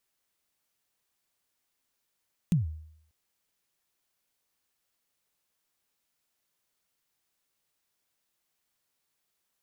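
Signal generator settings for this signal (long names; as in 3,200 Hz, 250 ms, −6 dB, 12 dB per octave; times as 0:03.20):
synth kick length 0.59 s, from 190 Hz, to 78 Hz, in 142 ms, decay 0.69 s, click on, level −18 dB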